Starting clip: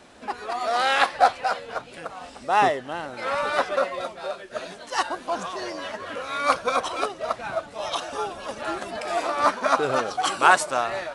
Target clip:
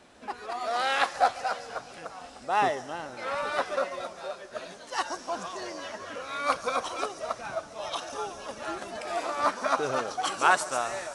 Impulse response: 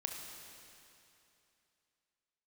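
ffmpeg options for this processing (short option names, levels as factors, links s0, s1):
-filter_complex "[0:a]asplit=2[s0][s1];[s1]highshelf=f=4300:t=q:w=3:g=11[s2];[1:a]atrim=start_sample=2205,asetrate=24696,aresample=44100,adelay=141[s3];[s2][s3]afir=irnorm=-1:irlink=0,volume=0.0944[s4];[s0][s4]amix=inputs=2:normalize=0,volume=0.531"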